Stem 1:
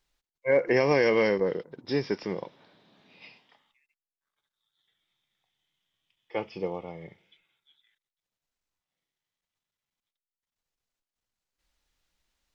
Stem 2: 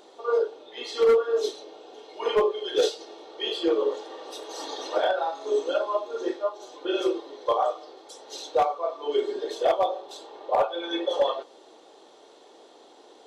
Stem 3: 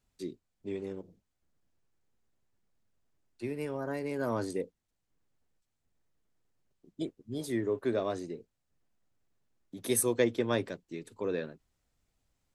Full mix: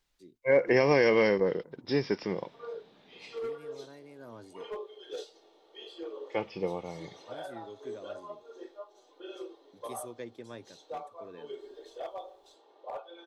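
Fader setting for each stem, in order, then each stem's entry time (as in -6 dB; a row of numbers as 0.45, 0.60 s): -0.5, -17.5, -15.5 dB; 0.00, 2.35, 0.00 s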